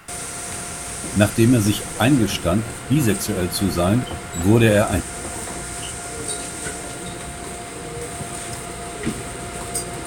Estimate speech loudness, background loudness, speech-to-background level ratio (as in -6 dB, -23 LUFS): -19.5 LUFS, -29.0 LUFS, 9.5 dB